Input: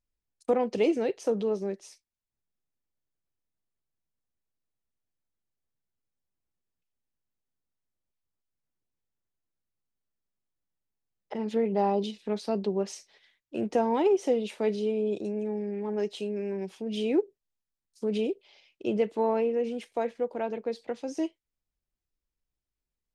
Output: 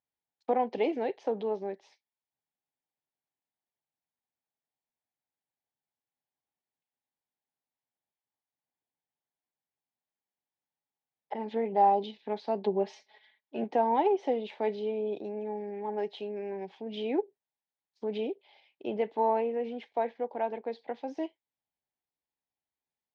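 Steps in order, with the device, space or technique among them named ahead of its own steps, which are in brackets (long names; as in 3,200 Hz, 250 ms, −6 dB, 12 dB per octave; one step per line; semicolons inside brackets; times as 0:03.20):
0:12.64–0:13.64: comb filter 4.7 ms, depth 87%
kitchen radio (loudspeaker in its box 190–3,400 Hz, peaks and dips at 200 Hz −7 dB, 340 Hz −6 dB, 490 Hz −4 dB, 820 Hz +8 dB, 1,300 Hz −8 dB, 2,700 Hz −6 dB)
high-shelf EQ 6,900 Hz +7 dB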